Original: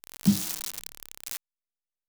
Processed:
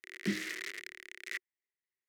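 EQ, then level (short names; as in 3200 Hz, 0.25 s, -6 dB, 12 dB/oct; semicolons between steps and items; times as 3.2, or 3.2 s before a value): low shelf 490 Hz -9.5 dB; dynamic EQ 850 Hz, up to +7 dB, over -56 dBFS, Q 1.1; double band-pass 850 Hz, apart 2.4 oct; +14.0 dB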